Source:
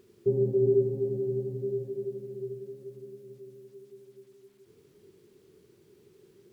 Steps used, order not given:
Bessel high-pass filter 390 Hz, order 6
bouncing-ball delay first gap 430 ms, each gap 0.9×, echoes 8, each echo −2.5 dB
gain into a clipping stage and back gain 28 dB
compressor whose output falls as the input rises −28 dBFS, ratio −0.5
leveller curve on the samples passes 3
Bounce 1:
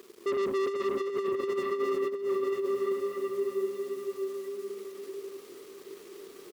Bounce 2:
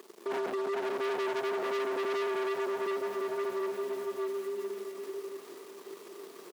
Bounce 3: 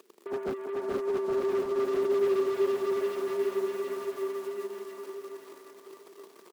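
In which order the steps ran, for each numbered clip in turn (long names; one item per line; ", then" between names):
Bessel high-pass filter, then gain into a clipping stage and back, then leveller curve on the samples, then bouncing-ball delay, then compressor whose output falls as the input rises
compressor whose output falls as the input rises, then leveller curve on the samples, then bouncing-ball delay, then gain into a clipping stage and back, then Bessel high-pass filter
leveller curve on the samples, then Bessel high-pass filter, then compressor whose output falls as the input rises, then gain into a clipping stage and back, then bouncing-ball delay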